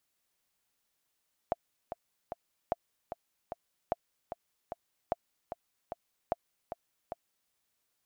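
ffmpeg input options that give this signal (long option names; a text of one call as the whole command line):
ffmpeg -f lavfi -i "aevalsrc='pow(10,(-16-9*gte(mod(t,3*60/150),60/150))/20)*sin(2*PI*683*mod(t,60/150))*exp(-6.91*mod(t,60/150)/0.03)':duration=6:sample_rate=44100" out.wav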